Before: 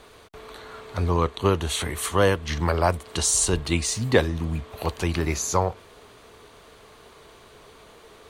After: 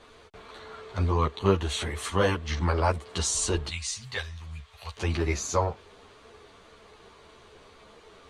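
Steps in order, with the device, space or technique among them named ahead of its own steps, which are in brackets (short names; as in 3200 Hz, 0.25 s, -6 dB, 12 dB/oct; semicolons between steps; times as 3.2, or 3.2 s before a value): 3.69–4.97 passive tone stack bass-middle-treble 10-0-10; string-machine ensemble chorus (ensemble effect; LPF 7200 Hz 12 dB/oct)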